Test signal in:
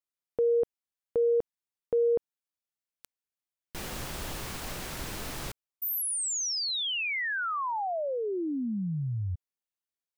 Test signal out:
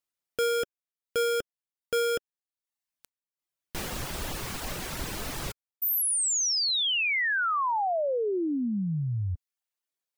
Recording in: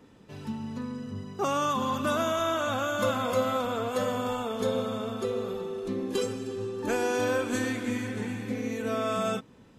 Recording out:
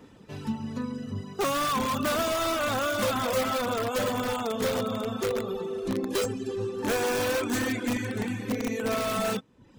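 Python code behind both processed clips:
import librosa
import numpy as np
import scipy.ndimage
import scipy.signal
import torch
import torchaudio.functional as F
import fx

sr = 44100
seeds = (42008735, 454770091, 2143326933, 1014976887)

p1 = (np.mod(10.0 ** (23.5 / 20.0) * x + 1.0, 2.0) - 1.0) / 10.0 ** (23.5 / 20.0)
p2 = x + F.gain(torch.from_numpy(p1), -3.5).numpy()
y = fx.dereverb_blind(p2, sr, rt60_s=0.65)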